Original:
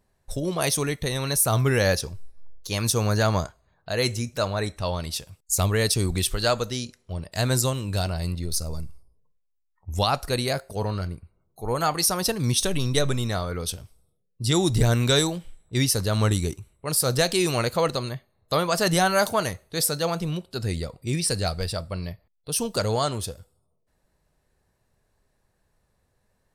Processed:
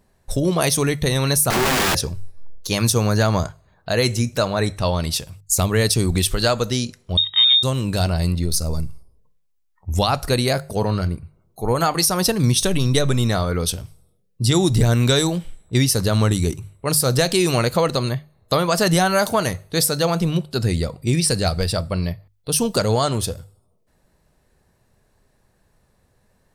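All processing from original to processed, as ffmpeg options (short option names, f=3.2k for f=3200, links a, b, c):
-filter_complex "[0:a]asettb=1/sr,asplit=3[a][b][c];[a]atrim=end=1.504[d];[b]atrim=start=1.5:end=1.95,asetpts=PTS-STARTPTS,afade=t=in:d=0.004:c=qsin,afade=t=out:st=0.446:d=0.004:c=qsin,lowpass=1.7k,aeval=exprs='(mod(11.2*val(0)+1,2)-1)/11.2':c=same[e];[c]atrim=start=1.946[f];[d][e]acrossfade=d=0.004:c1=hsin:c2=qsin[g];[g][f]acrossfade=d=0.004:c1=qsin:c2=hsin,asettb=1/sr,asplit=3[h][i][j];[h]atrim=end=7.174[k];[i]atrim=start=7.17:end=7.63,asetpts=PTS-STARTPTS,afade=t=in:d=0.004:c=qsin,afade=t=out:st=0.456:d=0.004:c=qsin,aemphasis=mode=reproduction:type=riaa,lowpass=f=3.2k:t=q:w=0.5098,lowpass=f=3.2k:t=q:w=0.6013,lowpass=f=3.2k:t=q:w=0.9,lowpass=f=3.2k:t=q:w=2.563,afreqshift=-3800[l];[j]atrim=start=7.626[m];[k][l]acrossfade=d=0.004:c1=hsin:c2=qsin[n];[n][m]acrossfade=d=0.004:c1=qsin:c2=hsin,acompressor=threshold=-24dB:ratio=2.5,equalizer=f=170:t=o:w=2:g=3,bandreject=f=50:t=h:w=6,bandreject=f=100:t=h:w=6,bandreject=f=150:t=h:w=6,volume=7.5dB"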